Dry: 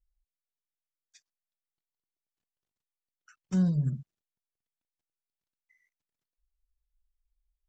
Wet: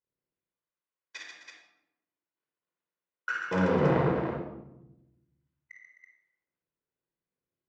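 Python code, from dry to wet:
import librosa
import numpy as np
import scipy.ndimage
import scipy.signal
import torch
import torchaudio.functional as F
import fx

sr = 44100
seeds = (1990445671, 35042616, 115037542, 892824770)

y = fx.octave_divider(x, sr, octaves=1, level_db=0.0)
y = fx.over_compress(y, sr, threshold_db=-27.0, ratio=-0.5)
y = fx.leveller(y, sr, passes=5)
y = 10.0 ** (-24.5 / 20.0) * np.tanh(y / 10.0 ** (-24.5 / 20.0))
y = fx.bandpass_edges(y, sr, low_hz=380.0, high_hz=2100.0)
y = fx.echo_multitap(y, sr, ms=(53, 137, 259, 329), db=(-3.5, -5.0, -12.0, -6.0))
y = fx.room_shoebox(y, sr, seeds[0], volume_m3=2900.0, walls='furnished', distance_m=4.9)
y = y * 10.0 ** (3.5 / 20.0)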